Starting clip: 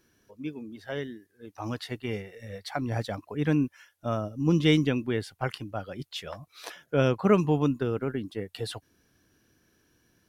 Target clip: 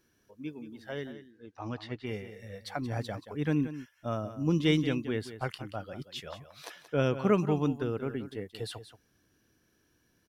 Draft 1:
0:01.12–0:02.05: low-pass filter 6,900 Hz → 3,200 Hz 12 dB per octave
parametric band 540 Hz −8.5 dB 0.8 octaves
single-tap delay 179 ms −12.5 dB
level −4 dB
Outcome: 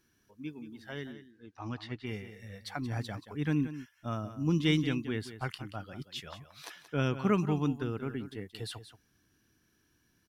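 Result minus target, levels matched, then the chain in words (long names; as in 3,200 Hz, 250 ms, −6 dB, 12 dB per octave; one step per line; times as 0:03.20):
500 Hz band −3.5 dB
0:01.12–0:02.05: low-pass filter 6,900 Hz → 3,200 Hz 12 dB per octave
single-tap delay 179 ms −12.5 dB
level −4 dB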